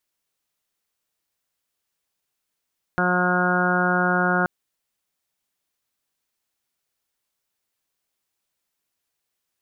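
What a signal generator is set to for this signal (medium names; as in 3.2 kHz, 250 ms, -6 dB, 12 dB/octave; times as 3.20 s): steady additive tone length 1.48 s, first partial 180 Hz, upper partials -3.5/-5/-2/-7/-7/-5.5/2/-7 dB, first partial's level -24 dB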